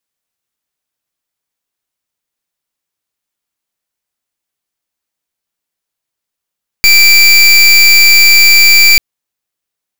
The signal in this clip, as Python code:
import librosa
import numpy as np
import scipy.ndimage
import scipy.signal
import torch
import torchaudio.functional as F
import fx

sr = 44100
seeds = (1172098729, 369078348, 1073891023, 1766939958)

y = fx.pulse(sr, length_s=2.14, hz=2340.0, level_db=-4.5, duty_pct=26)